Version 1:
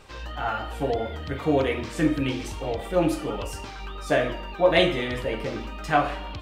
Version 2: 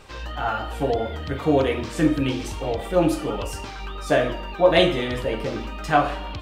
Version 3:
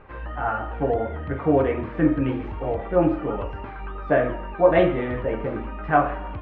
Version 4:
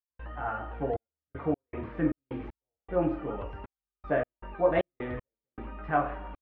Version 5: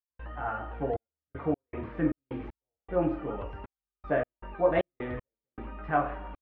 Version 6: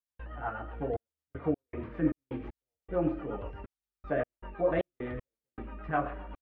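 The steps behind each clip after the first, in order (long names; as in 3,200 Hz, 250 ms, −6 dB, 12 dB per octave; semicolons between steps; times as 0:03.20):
dynamic equaliser 2,100 Hz, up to −4 dB, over −44 dBFS, Q 2.7; level +3 dB
low-pass filter 2,000 Hz 24 dB per octave
gate pattern ".xxxx..x.xx.x." 78 BPM −60 dB; level −8 dB
no processing that can be heard
rotating-speaker cabinet horn 8 Hz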